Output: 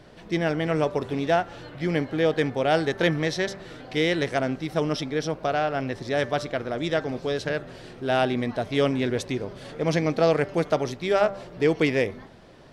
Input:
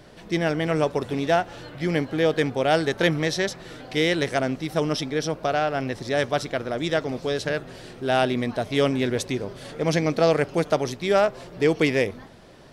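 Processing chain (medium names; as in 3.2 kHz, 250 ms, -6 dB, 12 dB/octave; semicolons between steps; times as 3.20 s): treble shelf 7 kHz -9 dB; de-hum 195.9 Hz, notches 11; trim -1 dB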